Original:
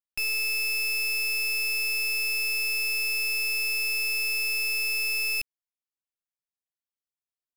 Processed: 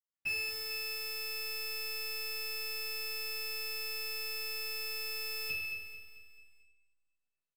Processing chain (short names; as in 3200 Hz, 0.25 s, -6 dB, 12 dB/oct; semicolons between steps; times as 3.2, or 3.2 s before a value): feedback echo 0.22 s, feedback 46%, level -9.5 dB; reverb RT60 0.85 s, pre-delay 77 ms